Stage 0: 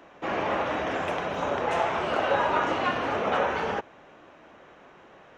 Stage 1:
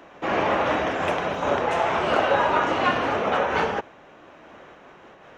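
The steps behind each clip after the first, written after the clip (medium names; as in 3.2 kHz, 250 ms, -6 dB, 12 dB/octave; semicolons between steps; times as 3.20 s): random flutter of the level, depth 55%; trim +7.5 dB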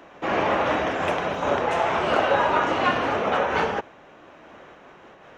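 no audible change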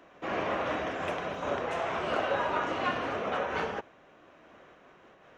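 band-stop 860 Hz, Q 12; trim -8.5 dB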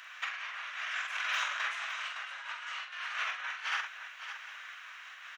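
high-pass 1.5 kHz 24 dB/octave; compressor with a negative ratio -46 dBFS, ratio -0.5; multi-tap echo 45/562/750 ms -6/-9.5/-18.5 dB; trim +8.5 dB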